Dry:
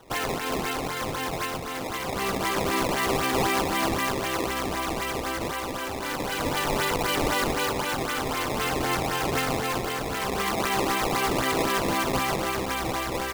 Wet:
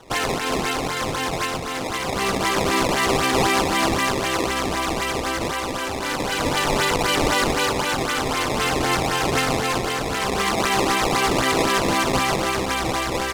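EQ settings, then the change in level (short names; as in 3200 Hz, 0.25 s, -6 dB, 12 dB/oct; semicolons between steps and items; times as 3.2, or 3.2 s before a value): air absorption 69 m; high shelf 4200 Hz +6 dB; high shelf 9600 Hz +9 dB; +5.0 dB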